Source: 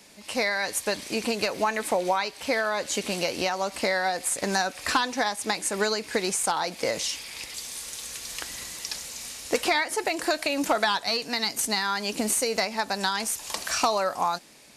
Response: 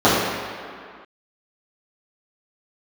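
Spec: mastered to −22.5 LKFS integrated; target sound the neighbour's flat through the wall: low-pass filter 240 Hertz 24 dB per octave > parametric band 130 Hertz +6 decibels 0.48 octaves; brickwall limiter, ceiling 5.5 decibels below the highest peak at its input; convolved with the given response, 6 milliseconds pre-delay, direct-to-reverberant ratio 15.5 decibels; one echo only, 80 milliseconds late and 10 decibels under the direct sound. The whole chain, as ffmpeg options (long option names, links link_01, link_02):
-filter_complex "[0:a]alimiter=limit=-19.5dB:level=0:latency=1,aecho=1:1:80:0.316,asplit=2[link_01][link_02];[1:a]atrim=start_sample=2205,adelay=6[link_03];[link_02][link_03]afir=irnorm=-1:irlink=0,volume=-42.5dB[link_04];[link_01][link_04]amix=inputs=2:normalize=0,lowpass=frequency=240:width=0.5412,lowpass=frequency=240:width=1.3066,equalizer=frequency=130:width_type=o:width=0.48:gain=6,volume=20dB"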